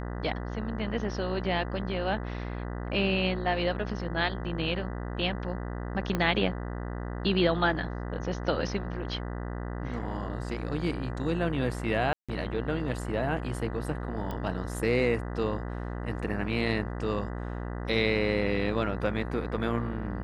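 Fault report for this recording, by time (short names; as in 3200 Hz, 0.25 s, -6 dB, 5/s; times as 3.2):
buzz 60 Hz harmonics 33 -35 dBFS
6.15 pop -15 dBFS
12.13–12.29 gap 0.156 s
14.31 pop -22 dBFS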